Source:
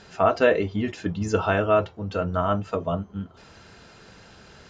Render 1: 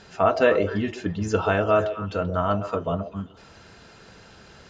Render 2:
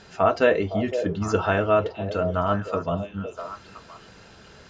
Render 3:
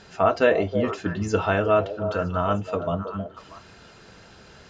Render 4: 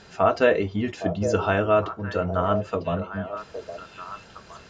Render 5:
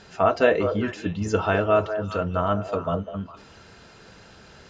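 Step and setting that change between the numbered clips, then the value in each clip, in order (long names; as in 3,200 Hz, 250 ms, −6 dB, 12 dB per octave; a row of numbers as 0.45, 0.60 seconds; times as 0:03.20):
echo through a band-pass that steps, delay time: 129, 511, 319, 813, 203 milliseconds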